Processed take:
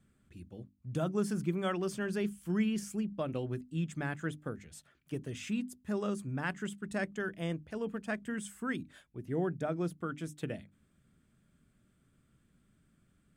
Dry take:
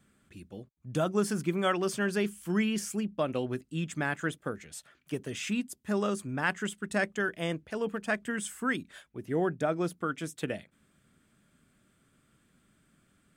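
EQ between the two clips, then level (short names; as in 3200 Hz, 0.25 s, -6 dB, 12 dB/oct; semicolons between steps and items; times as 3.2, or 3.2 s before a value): low shelf 240 Hz +12 dB; notches 50/100/150/200/250/300 Hz; -8.0 dB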